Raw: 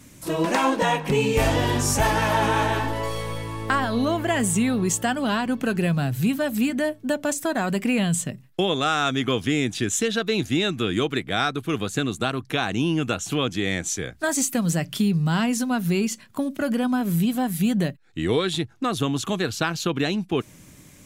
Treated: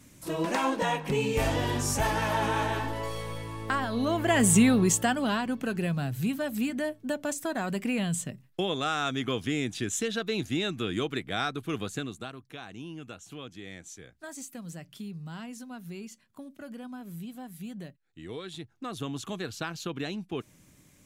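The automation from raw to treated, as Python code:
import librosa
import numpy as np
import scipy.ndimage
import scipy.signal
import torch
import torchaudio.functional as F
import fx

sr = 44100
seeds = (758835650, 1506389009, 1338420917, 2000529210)

y = fx.gain(x, sr, db=fx.line((3.96, -6.5), (4.55, 2.5), (5.6, -7.0), (11.87, -7.0), (12.43, -18.5), (18.24, -18.5), (19.1, -10.5)))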